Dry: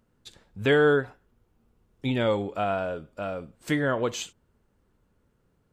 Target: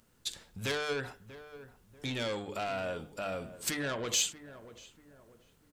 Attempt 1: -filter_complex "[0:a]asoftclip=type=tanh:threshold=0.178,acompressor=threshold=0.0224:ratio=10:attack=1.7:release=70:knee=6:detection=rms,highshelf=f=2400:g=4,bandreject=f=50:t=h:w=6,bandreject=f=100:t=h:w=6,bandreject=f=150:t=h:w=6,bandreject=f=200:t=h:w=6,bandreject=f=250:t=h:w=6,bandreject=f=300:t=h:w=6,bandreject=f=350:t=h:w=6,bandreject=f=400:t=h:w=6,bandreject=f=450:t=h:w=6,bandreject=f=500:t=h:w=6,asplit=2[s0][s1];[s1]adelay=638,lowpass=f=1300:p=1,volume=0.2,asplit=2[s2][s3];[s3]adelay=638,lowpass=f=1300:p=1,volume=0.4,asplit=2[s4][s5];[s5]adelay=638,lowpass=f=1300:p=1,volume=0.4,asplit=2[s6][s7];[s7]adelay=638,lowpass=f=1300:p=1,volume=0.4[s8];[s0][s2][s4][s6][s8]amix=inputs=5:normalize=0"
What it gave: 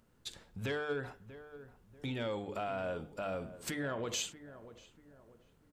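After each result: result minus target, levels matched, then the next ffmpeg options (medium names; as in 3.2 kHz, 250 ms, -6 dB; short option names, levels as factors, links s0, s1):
saturation: distortion -10 dB; 4 kHz band -3.5 dB
-filter_complex "[0:a]asoftclip=type=tanh:threshold=0.0668,acompressor=threshold=0.0224:ratio=10:attack=1.7:release=70:knee=6:detection=rms,highshelf=f=2400:g=4,bandreject=f=50:t=h:w=6,bandreject=f=100:t=h:w=6,bandreject=f=150:t=h:w=6,bandreject=f=200:t=h:w=6,bandreject=f=250:t=h:w=6,bandreject=f=300:t=h:w=6,bandreject=f=350:t=h:w=6,bandreject=f=400:t=h:w=6,bandreject=f=450:t=h:w=6,bandreject=f=500:t=h:w=6,asplit=2[s0][s1];[s1]adelay=638,lowpass=f=1300:p=1,volume=0.2,asplit=2[s2][s3];[s3]adelay=638,lowpass=f=1300:p=1,volume=0.4,asplit=2[s4][s5];[s5]adelay=638,lowpass=f=1300:p=1,volume=0.4,asplit=2[s6][s7];[s7]adelay=638,lowpass=f=1300:p=1,volume=0.4[s8];[s0][s2][s4][s6][s8]amix=inputs=5:normalize=0"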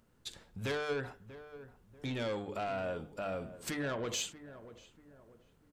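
4 kHz band -3.5 dB
-filter_complex "[0:a]asoftclip=type=tanh:threshold=0.0668,acompressor=threshold=0.0224:ratio=10:attack=1.7:release=70:knee=6:detection=rms,highshelf=f=2400:g=14,bandreject=f=50:t=h:w=6,bandreject=f=100:t=h:w=6,bandreject=f=150:t=h:w=6,bandreject=f=200:t=h:w=6,bandreject=f=250:t=h:w=6,bandreject=f=300:t=h:w=6,bandreject=f=350:t=h:w=6,bandreject=f=400:t=h:w=6,bandreject=f=450:t=h:w=6,bandreject=f=500:t=h:w=6,asplit=2[s0][s1];[s1]adelay=638,lowpass=f=1300:p=1,volume=0.2,asplit=2[s2][s3];[s3]adelay=638,lowpass=f=1300:p=1,volume=0.4,asplit=2[s4][s5];[s5]adelay=638,lowpass=f=1300:p=1,volume=0.4,asplit=2[s6][s7];[s7]adelay=638,lowpass=f=1300:p=1,volume=0.4[s8];[s0][s2][s4][s6][s8]amix=inputs=5:normalize=0"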